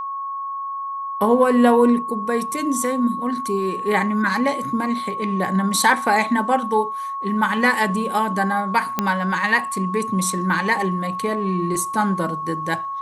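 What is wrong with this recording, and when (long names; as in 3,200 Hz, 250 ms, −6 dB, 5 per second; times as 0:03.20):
whistle 1,100 Hz −25 dBFS
0:08.99: click −5 dBFS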